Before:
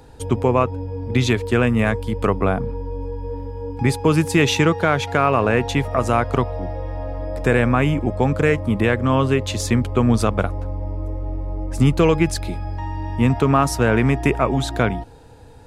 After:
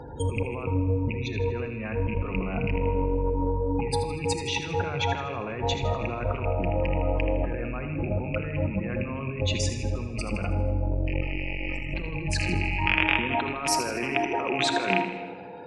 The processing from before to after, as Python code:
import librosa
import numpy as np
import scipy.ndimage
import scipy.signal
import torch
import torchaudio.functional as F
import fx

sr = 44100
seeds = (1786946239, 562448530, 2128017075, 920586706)

y = fx.rattle_buzz(x, sr, strikes_db=-21.0, level_db=-10.0)
y = fx.highpass(y, sr, hz=fx.steps((0.0, 56.0), (12.86, 320.0)), slope=12)
y = fx.spec_gate(y, sr, threshold_db=-20, keep='strong')
y = fx.high_shelf(y, sr, hz=6200.0, db=-10.0)
y = fx.over_compress(y, sr, threshold_db=-29.0, ratio=-1.0)
y = fx.echo_feedback(y, sr, ms=80, feedback_pct=52, wet_db=-11.0)
y = fx.room_shoebox(y, sr, seeds[0], volume_m3=2500.0, walls='mixed', distance_m=0.91)
y = fx.transformer_sat(y, sr, knee_hz=280.0)